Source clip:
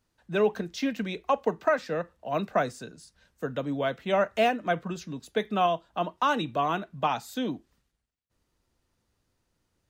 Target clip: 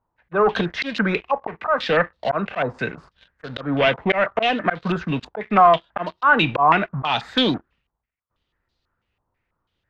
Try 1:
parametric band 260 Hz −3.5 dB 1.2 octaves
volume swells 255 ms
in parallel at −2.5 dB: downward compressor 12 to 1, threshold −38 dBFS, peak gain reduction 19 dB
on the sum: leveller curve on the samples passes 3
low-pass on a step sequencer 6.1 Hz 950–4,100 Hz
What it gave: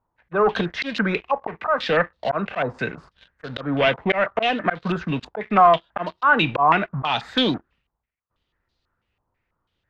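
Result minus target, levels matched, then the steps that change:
downward compressor: peak gain reduction +6 dB
change: downward compressor 12 to 1, threshold −31.5 dBFS, peak gain reduction 13 dB

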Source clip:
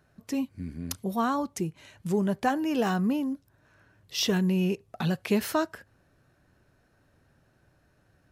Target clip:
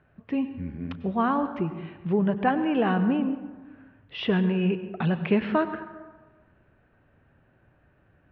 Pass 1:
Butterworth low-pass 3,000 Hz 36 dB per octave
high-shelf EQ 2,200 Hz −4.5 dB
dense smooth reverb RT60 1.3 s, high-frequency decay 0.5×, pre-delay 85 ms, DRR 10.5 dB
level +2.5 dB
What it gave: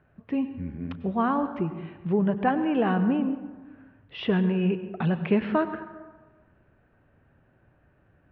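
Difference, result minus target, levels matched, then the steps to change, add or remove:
4,000 Hz band −2.5 dB
remove: high-shelf EQ 2,200 Hz −4.5 dB

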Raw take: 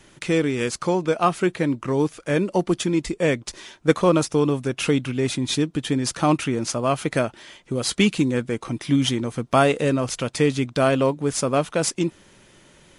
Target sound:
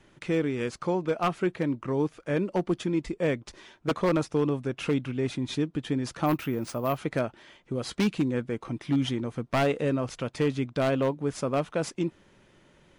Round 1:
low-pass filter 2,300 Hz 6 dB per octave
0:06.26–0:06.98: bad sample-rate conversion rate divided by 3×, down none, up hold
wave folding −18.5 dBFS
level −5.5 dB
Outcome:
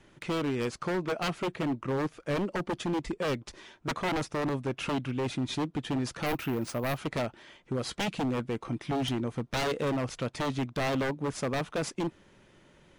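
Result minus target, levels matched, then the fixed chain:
wave folding: distortion +13 dB
low-pass filter 2,300 Hz 6 dB per octave
0:06.26–0:06.98: bad sample-rate conversion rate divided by 3×, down none, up hold
wave folding −12 dBFS
level −5.5 dB

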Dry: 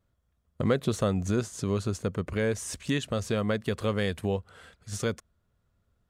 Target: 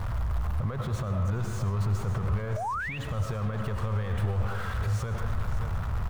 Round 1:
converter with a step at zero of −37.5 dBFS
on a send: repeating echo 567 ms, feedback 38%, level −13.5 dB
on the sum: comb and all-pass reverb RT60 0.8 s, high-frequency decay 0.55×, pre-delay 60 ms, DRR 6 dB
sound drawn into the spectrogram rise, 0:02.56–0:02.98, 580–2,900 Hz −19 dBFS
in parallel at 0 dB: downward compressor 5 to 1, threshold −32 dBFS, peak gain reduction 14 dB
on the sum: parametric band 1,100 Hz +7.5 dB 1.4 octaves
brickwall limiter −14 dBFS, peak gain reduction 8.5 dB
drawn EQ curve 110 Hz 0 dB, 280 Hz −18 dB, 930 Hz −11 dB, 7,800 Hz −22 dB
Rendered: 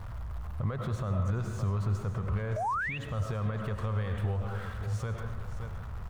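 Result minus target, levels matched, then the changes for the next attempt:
downward compressor: peak gain reduction +6 dB; converter with a step at zero: distortion −8 dB
change: converter with a step at zero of −28 dBFS
change: downward compressor 5 to 1, threshold −24 dBFS, peak gain reduction 8 dB

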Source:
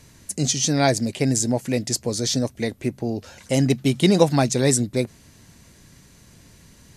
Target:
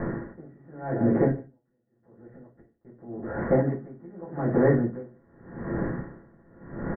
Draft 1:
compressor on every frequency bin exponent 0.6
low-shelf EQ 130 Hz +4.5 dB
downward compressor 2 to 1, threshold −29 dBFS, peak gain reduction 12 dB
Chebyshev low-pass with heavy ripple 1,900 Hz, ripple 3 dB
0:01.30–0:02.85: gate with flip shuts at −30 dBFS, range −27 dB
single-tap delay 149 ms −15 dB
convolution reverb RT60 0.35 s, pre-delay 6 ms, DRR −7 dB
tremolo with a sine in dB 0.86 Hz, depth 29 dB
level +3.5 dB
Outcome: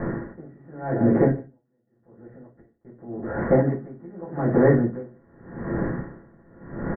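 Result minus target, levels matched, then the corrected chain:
downward compressor: peak gain reduction −3.5 dB
compressor on every frequency bin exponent 0.6
low-shelf EQ 130 Hz +4.5 dB
downward compressor 2 to 1, threshold −36 dBFS, peak gain reduction 15.5 dB
Chebyshev low-pass with heavy ripple 1,900 Hz, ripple 3 dB
0:01.30–0:02.85: gate with flip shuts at −30 dBFS, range −27 dB
single-tap delay 149 ms −15 dB
convolution reverb RT60 0.35 s, pre-delay 6 ms, DRR −7 dB
tremolo with a sine in dB 0.86 Hz, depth 29 dB
level +3.5 dB

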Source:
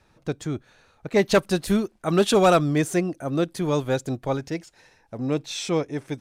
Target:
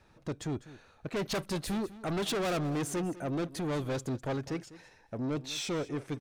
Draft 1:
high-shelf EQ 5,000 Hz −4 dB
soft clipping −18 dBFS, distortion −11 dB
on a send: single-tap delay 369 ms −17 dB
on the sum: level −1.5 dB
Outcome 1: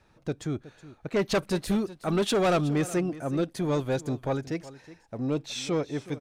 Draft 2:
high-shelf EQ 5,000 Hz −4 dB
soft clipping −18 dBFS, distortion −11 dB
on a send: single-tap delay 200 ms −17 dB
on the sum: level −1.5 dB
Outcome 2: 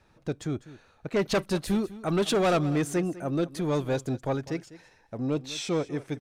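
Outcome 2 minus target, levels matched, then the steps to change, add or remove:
soft clipping: distortion −7 dB
change: soft clipping −28 dBFS, distortion −4 dB

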